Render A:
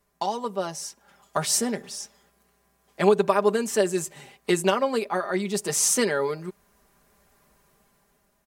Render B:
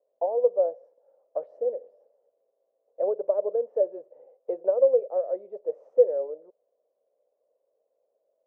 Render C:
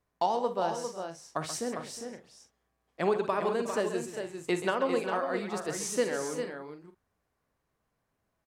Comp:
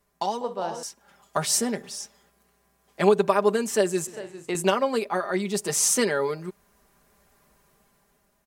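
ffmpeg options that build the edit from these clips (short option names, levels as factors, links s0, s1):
-filter_complex "[2:a]asplit=2[s0][s1];[0:a]asplit=3[s2][s3][s4];[s2]atrim=end=0.412[s5];[s0]atrim=start=0.408:end=0.832[s6];[s3]atrim=start=0.828:end=4.072[s7];[s1]atrim=start=4.068:end=4.552[s8];[s4]atrim=start=4.548[s9];[s5][s6]acrossfade=d=0.004:c1=hsin:c2=hsin[s10];[s10][s7]acrossfade=d=0.004:c1=hsin:c2=hsin[s11];[s11][s8]acrossfade=d=0.004:c1=hsin:c2=hsin[s12];[s12][s9]acrossfade=d=0.004:c1=hsin:c2=hsin"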